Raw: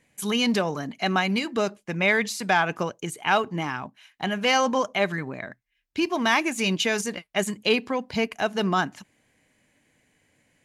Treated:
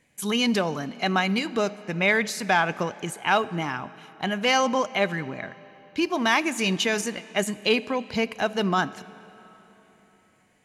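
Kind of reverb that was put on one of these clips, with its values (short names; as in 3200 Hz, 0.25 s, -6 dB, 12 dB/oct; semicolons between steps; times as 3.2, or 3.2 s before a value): digital reverb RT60 3.8 s, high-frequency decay 0.8×, pre-delay 0 ms, DRR 17.5 dB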